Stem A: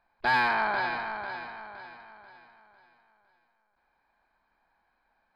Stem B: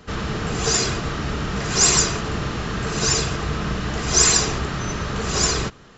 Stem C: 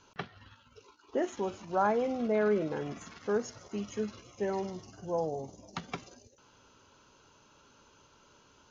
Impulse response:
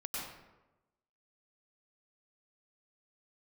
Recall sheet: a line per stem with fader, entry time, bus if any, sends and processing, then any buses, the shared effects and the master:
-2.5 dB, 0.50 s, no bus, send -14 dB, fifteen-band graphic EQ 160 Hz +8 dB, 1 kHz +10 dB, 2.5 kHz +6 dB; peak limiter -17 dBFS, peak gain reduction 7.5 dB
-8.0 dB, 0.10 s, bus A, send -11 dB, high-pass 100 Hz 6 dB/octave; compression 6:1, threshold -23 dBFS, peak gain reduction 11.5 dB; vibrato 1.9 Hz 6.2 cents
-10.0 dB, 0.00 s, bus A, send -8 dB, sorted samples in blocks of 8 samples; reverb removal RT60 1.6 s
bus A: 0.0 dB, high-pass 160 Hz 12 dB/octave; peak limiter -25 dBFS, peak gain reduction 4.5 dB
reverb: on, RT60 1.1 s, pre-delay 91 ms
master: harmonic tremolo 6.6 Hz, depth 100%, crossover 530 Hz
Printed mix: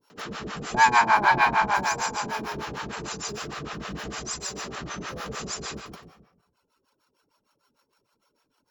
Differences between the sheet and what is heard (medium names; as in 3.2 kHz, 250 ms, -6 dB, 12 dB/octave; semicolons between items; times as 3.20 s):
stem A -2.5 dB -> +9.0 dB; stem B -8.0 dB -> +1.0 dB; stem C -10.0 dB -> -3.0 dB